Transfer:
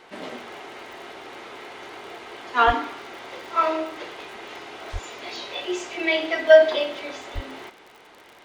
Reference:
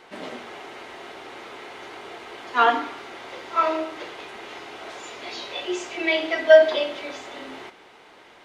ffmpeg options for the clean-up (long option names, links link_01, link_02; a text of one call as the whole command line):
ffmpeg -i in.wav -filter_complex "[0:a]adeclick=threshold=4,asplit=3[link_01][link_02][link_03];[link_01]afade=type=out:start_time=2.66:duration=0.02[link_04];[link_02]highpass=frequency=140:width=0.5412,highpass=frequency=140:width=1.3066,afade=type=in:start_time=2.66:duration=0.02,afade=type=out:start_time=2.78:duration=0.02[link_05];[link_03]afade=type=in:start_time=2.78:duration=0.02[link_06];[link_04][link_05][link_06]amix=inputs=3:normalize=0,asplit=3[link_07][link_08][link_09];[link_07]afade=type=out:start_time=4.92:duration=0.02[link_10];[link_08]highpass=frequency=140:width=0.5412,highpass=frequency=140:width=1.3066,afade=type=in:start_time=4.92:duration=0.02,afade=type=out:start_time=5.04:duration=0.02[link_11];[link_09]afade=type=in:start_time=5.04:duration=0.02[link_12];[link_10][link_11][link_12]amix=inputs=3:normalize=0,asplit=3[link_13][link_14][link_15];[link_13]afade=type=out:start_time=7.34:duration=0.02[link_16];[link_14]highpass=frequency=140:width=0.5412,highpass=frequency=140:width=1.3066,afade=type=in:start_time=7.34:duration=0.02,afade=type=out:start_time=7.46:duration=0.02[link_17];[link_15]afade=type=in:start_time=7.46:duration=0.02[link_18];[link_16][link_17][link_18]amix=inputs=3:normalize=0" out.wav